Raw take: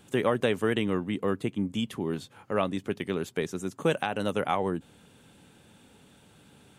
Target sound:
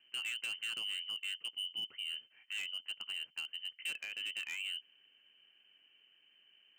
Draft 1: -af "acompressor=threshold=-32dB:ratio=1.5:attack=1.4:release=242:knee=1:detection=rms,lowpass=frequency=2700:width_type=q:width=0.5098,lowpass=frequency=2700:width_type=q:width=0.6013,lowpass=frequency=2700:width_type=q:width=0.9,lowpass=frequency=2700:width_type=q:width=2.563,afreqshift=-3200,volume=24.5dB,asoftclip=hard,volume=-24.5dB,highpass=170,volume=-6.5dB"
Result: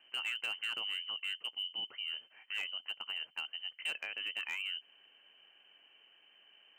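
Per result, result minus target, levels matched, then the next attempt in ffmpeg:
1,000 Hz band +7.5 dB; downward compressor: peak gain reduction +3 dB
-af "acompressor=threshold=-32dB:ratio=1.5:attack=1.4:release=242:knee=1:detection=rms,lowpass=frequency=2700:width_type=q:width=0.5098,lowpass=frequency=2700:width_type=q:width=0.6013,lowpass=frequency=2700:width_type=q:width=0.9,lowpass=frequency=2700:width_type=q:width=2.563,afreqshift=-3200,volume=24.5dB,asoftclip=hard,volume=-24.5dB,highpass=170,equalizer=frequency=800:width_type=o:width=2.2:gain=-13.5,volume=-6.5dB"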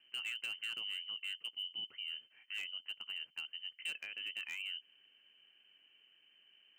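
downward compressor: peak gain reduction +3 dB
-af "acompressor=threshold=-23dB:ratio=1.5:attack=1.4:release=242:knee=1:detection=rms,lowpass=frequency=2700:width_type=q:width=0.5098,lowpass=frequency=2700:width_type=q:width=0.6013,lowpass=frequency=2700:width_type=q:width=0.9,lowpass=frequency=2700:width_type=q:width=2.563,afreqshift=-3200,volume=24.5dB,asoftclip=hard,volume=-24.5dB,highpass=170,equalizer=frequency=800:width_type=o:width=2.2:gain=-13.5,volume=-6.5dB"

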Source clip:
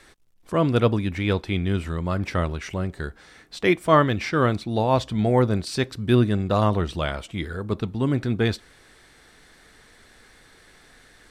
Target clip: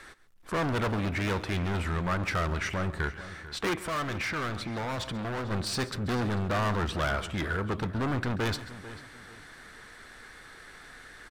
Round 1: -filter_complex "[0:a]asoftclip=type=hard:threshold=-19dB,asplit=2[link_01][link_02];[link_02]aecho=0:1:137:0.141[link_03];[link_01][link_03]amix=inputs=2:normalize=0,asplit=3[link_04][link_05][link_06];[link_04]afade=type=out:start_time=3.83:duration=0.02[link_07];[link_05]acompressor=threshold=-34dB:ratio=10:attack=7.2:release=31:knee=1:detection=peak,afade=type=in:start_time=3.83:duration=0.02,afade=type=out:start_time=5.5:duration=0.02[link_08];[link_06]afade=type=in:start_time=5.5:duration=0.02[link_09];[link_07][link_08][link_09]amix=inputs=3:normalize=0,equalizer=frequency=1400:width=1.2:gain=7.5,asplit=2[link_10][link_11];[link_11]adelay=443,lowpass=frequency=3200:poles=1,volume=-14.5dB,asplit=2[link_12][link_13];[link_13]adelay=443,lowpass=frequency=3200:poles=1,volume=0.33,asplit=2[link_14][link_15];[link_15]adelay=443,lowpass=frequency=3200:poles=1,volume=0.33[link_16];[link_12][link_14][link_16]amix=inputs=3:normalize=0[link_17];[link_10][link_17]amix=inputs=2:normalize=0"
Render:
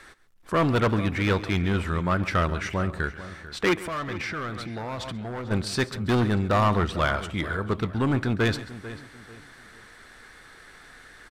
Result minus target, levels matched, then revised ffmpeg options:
hard clipping: distortion −5 dB
-filter_complex "[0:a]asoftclip=type=hard:threshold=-28dB,asplit=2[link_01][link_02];[link_02]aecho=0:1:137:0.141[link_03];[link_01][link_03]amix=inputs=2:normalize=0,asplit=3[link_04][link_05][link_06];[link_04]afade=type=out:start_time=3.83:duration=0.02[link_07];[link_05]acompressor=threshold=-34dB:ratio=10:attack=7.2:release=31:knee=1:detection=peak,afade=type=in:start_time=3.83:duration=0.02,afade=type=out:start_time=5.5:duration=0.02[link_08];[link_06]afade=type=in:start_time=5.5:duration=0.02[link_09];[link_07][link_08][link_09]amix=inputs=3:normalize=0,equalizer=frequency=1400:width=1.2:gain=7.5,asplit=2[link_10][link_11];[link_11]adelay=443,lowpass=frequency=3200:poles=1,volume=-14.5dB,asplit=2[link_12][link_13];[link_13]adelay=443,lowpass=frequency=3200:poles=1,volume=0.33,asplit=2[link_14][link_15];[link_15]adelay=443,lowpass=frequency=3200:poles=1,volume=0.33[link_16];[link_12][link_14][link_16]amix=inputs=3:normalize=0[link_17];[link_10][link_17]amix=inputs=2:normalize=0"

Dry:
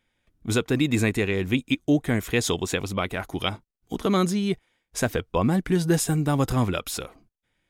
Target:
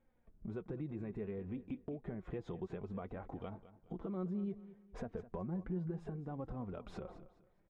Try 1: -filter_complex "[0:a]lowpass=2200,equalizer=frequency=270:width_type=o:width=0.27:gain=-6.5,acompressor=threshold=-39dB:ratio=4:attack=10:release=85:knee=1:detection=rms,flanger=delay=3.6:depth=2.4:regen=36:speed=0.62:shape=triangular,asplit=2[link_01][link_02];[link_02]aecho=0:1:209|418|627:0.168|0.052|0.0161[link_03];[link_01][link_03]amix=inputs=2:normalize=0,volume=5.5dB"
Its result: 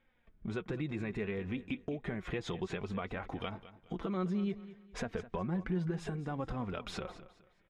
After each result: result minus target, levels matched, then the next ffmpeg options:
2,000 Hz band +10.0 dB; downward compressor: peak gain reduction −5 dB
-filter_complex "[0:a]lowpass=850,equalizer=frequency=270:width_type=o:width=0.27:gain=-6.5,acompressor=threshold=-39dB:ratio=4:attack=10:release=85:knee=1:detection=rms,flanger=delay=3.6:depth=2.4:regen=36:speed=0.62:shape=triangular,asplit=2[link_01][link_02];[link_02]aecho=0:1:209|418|627:0.168|0.052|0.0161[link_03];[link_01][link_03]amix=inputs=2:normalize=0,volume=5.5dB"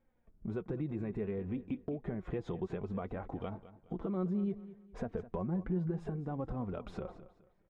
downward compressor: peak gain reduction −5 dB
-filter_complex "[0:a]lowpass=850,equalizer=frequency=270:width_type=o:width=0.27:gain=-6.5,acompressor=threshold=-46dB:ratio=4:attack=10:release=85:knee=1:detection=rms,flanger=delay=3.6:depth=2.4:regen=36:speed=0.62:shape=triangular,asplit=2[link_01][link_02];[link_02]aecho=0:1:209|418|627:0.168|0.052|0.0161[link_03];[link_01][link_03]amix=inputs=2:normalize=0,volume=5.5dB"

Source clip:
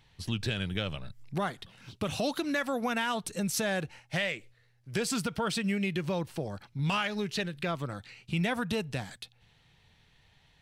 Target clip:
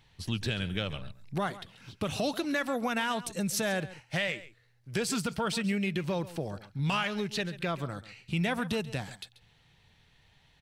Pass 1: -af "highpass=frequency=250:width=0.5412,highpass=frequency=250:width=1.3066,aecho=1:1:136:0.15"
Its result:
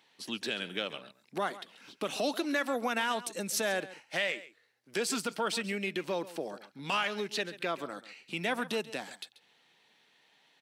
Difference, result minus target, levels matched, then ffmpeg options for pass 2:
250 Hz band −4.0 dB
-af "aecho=1:1:136:0.15"

